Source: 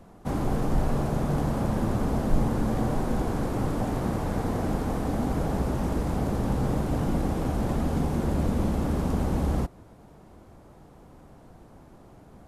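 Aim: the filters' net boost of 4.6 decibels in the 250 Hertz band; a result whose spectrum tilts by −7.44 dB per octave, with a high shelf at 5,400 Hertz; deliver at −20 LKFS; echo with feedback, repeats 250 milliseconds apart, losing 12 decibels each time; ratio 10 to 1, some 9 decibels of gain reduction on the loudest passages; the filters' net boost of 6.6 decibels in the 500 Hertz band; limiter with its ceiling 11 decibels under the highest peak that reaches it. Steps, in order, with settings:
parametric band 250 Hz +4 dB
parametric band 500 Hz +7 dB
high-shelf EQ 5,400 Hz −6 dB
downward compressor 10 to 1, threshold −23 dBFS
brickwall limiter −26.5 dBFS
repeating echo 250 ms, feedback 25%, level −12 dB
level +15 dB

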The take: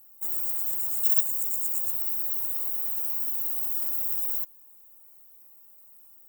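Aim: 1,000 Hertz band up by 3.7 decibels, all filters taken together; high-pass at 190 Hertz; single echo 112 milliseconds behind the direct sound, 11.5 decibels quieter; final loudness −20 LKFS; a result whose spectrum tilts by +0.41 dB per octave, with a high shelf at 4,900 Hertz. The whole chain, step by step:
high-pass filter 190 Hz
parametric band 1,000 Hz +5 dB
high-shelf EQ 4,900 Hz −8 dB
single-tap delay 112 ms −11.5 dB
level +12 dB

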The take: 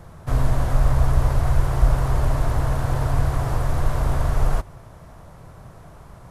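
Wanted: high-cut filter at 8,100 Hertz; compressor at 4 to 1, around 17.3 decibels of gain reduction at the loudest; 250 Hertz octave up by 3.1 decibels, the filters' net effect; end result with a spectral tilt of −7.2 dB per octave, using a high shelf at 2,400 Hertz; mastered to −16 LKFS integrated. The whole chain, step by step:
low-pass filter 8,100 Hz
parametric band 250 Hz +5.5 dB
high-shelf EQ 2,400 Hz −6 dB
downward compressor 4 to 1, threshold −33 dBFS
level +22 dB

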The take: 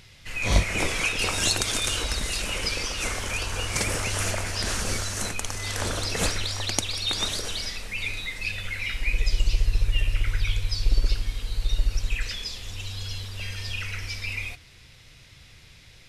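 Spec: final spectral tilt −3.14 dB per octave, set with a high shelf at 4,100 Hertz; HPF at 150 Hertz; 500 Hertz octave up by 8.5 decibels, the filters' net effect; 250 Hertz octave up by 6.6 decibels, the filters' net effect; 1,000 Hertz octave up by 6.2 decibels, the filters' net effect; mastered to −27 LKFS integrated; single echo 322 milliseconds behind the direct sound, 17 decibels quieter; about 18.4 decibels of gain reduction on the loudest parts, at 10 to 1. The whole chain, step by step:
high-pass filter 150 Hz
parametric band 250 Hz +7 dB
parametric band 500 Hz +7 dB
parametric band 1,000 Hz +6 dB
high-shelf EQ 4,100 Hz −6.5 dB
downward compressor 10 to 1, threshold −36 dBFS
single-tap delay 322 ms −17 dB
level +12 dB

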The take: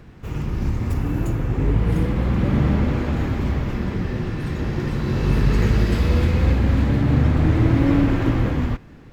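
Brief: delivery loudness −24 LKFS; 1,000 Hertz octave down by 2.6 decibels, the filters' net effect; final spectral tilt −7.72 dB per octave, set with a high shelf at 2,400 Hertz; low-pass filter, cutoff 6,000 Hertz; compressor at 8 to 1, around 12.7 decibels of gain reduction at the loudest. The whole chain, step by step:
low-pass filter 6,000 Hz
parametric band 1,000 Hz −4 dB
high-shelf EQ 2,400 Hz +3.5 dB
downward compressor 8 to 1, threshold −26 dBFS
level +7 dB

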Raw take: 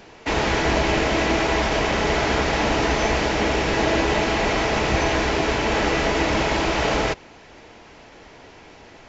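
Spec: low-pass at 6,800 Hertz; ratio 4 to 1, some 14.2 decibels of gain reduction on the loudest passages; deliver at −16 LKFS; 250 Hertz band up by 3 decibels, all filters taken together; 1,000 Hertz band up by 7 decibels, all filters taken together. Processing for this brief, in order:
low-pass filter 6,800 Hz
parametric band 250 Hz +3.5 dB
parametric band 1,000 Hz +8.5 dB
downward compressor 4 to 1, threshold −31 dBFS
level +15.5 dB

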